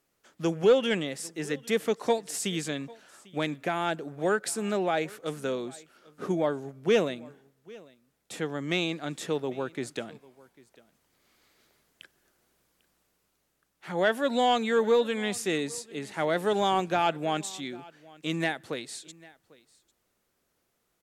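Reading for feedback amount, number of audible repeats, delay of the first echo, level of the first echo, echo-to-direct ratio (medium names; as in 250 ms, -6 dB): no regular repeats, 1, 797 ms, -23.0 dB, -23.0 dB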